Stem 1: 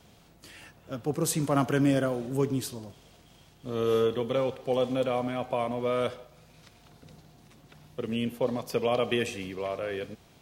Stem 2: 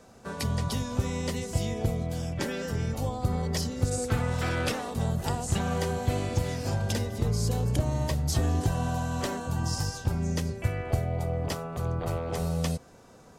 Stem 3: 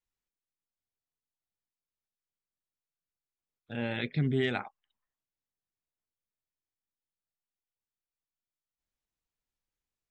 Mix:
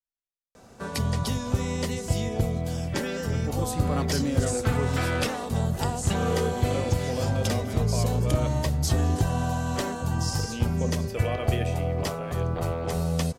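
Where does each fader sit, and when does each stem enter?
-5.5 dB, +2.5 dB, -12.0 dB; 2.40 s, 0.55 s, 0.00 s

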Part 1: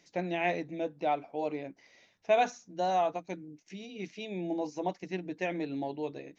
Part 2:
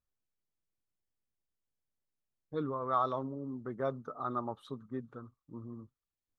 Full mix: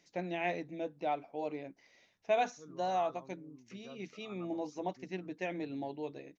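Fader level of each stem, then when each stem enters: -4.5 dB, -18.5 dB; 0.00 s, 0.05 s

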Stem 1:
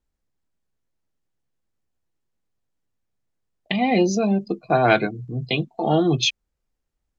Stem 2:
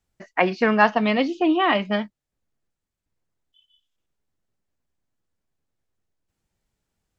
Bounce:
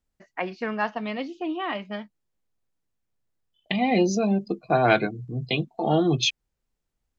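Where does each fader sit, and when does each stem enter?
-2.5 dB, -10.0 dB; 0.00 s, 0.00 s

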